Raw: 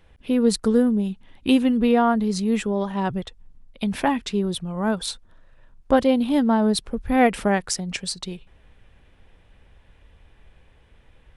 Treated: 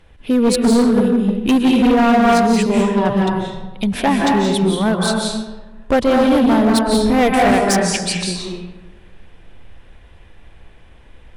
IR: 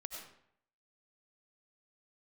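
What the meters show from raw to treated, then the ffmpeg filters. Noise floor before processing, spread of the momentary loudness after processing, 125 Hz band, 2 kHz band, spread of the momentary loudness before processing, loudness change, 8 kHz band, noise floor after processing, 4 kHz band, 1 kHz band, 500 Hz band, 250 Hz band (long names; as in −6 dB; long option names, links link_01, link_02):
−56 dBFS, 10 LU, +8.0 dB, +8.5 dB, 11 LU, +7.0 dB, +7.5 dB, −44 dBFS, +7.5 dB, +8.0 dB, +7.0 dB, +7.0 dB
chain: -filter_complex "[1:a]atrim=start_sample=2205,asetrate=23814,aresample=44100[link_01];[0:a][link_01]afir=irnorm=-1:irlink=0,volume=17dB,asoftclip=hard,volume=-17dB,volume=7.5dB"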